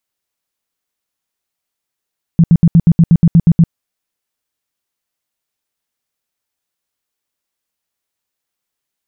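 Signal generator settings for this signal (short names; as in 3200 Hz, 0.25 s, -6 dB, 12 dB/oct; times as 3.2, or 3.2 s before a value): tone bursts 167 Hz, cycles 8, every 0.12 s, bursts 11, -3 dBFS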